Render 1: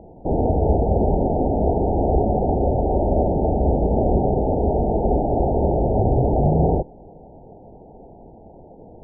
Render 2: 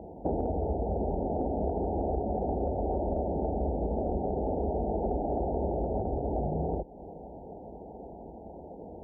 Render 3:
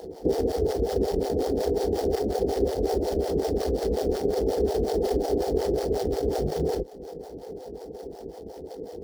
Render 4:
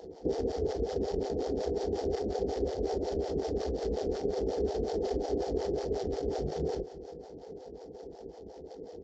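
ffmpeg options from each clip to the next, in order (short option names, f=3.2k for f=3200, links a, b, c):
-af "highpass=f=41:w=0.5412,highpass=f=41:w=1.3066,acompressor=threshold=-26dB:ratio=10,equalizer=f=120:w=3.9:g=-13.5"
-filter_complex "[0:a]acrusher=bits=3:mode=log:mix=0:aa=0.000001,superequalizer=6b=1.78:7b=3.55:12b=0.501:14b=2,acrossover=split=480[a][b];[a]aeval=exprs='val(0)*(1-1/2+1/2*cos(2*PI*5.5*n/s))':c=same[c];[b]aeval=exprs='val(0)*(1-1/2-1/2*cos(2*PI*5.5*n/s))':c=same[d];[c][d]amix=inputs=2:normalize=0,volume=4.5dB"
-af "aecho=1:1:179|358|537|716:0.2|0.0938|0.0441|0.0207,aresample=16000,aresample=44100,volume=-7dB"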